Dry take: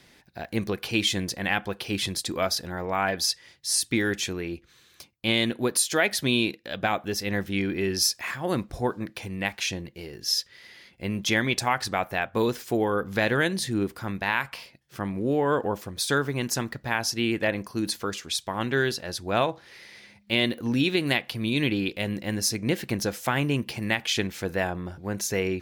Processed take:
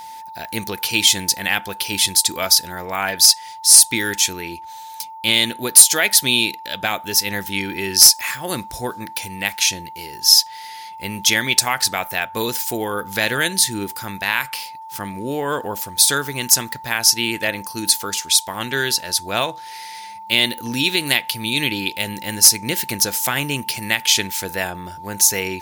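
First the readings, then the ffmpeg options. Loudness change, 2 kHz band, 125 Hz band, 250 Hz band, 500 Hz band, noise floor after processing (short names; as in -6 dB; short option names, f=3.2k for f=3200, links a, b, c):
+10.5 dB, +6.5 dB, -1.0 dB, -0.5 dB, 0.0 dB, -36 dBFS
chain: -af "aeval=exprs='val(0)+0.0178*sin(2*PI*890*n/s)':c=same,crystalizer=i=7:c=0,volume=0dB,asoftclip=hard,volume=-0dB,volume=-1dB"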